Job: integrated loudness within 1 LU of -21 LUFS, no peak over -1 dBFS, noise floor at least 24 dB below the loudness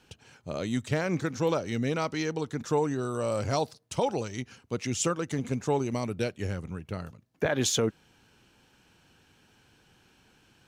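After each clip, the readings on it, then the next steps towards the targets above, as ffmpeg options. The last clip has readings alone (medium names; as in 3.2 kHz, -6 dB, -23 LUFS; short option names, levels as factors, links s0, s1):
loudness -30.5 LUFS; peak level -14.5 dBFS; loudness target -21.0 LUFS
-> -af "volume=2.99"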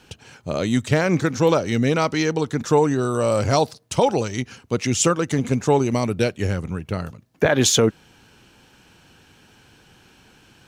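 loudness -21.0 LUFS; peak level -5.0 dBFS; noise floor -54 dBFS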